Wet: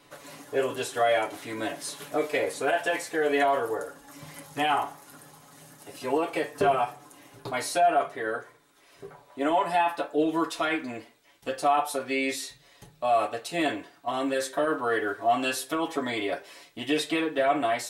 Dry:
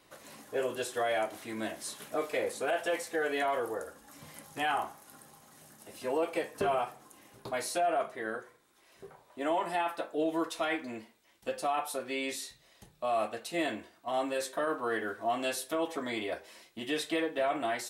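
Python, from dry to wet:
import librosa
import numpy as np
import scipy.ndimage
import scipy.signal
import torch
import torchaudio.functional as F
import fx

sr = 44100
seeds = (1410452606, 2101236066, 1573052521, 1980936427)

y = fx.high_shelf(x, sr, hz=8200.0, db=-4.0)
y = y + 0.65 * np.pad(y, (int(7.0 * sr / 1000.0), 0))[:len(y)]
y = y * 10.0 ** (4.5 / 20.0)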